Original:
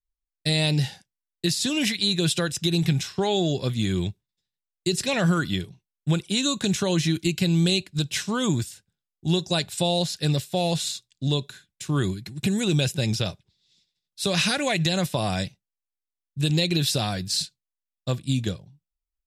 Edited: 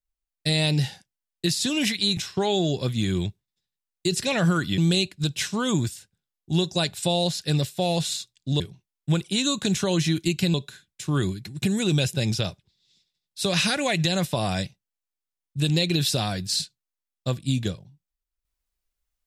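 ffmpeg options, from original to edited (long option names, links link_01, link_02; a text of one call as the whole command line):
ffmpeg -i in.wav -filter_complex "[0:a]asplit=5[link_01][link_02][link_03][link_04][link_05];[link_01]atrim=end=2.172[link_06];[link_02]atrim=start=2.978:end=5.592[link_07];[link_03]atrim=start=7.528:end=11.352[link_08];[link_04]atrim=start=5.588:end=7.532[link_09];[link_05]atrim=start=11.348[link_10];[link_06][link_07]acrossfade=duration=0.004:curve1=hsin:curve2=hsin[link_11];[link_11][link_08]acrossfade=duration=0.004:curve1=hsin:curve2=hsin[link_12];[link_12][link_09]acrossfade=duration=0.004:curve1=hsin:curve2=hsin[link_13];[link_13][link_10]acrossfade=duration=0.004:curve1=hsin:curve2=hsin" out.wav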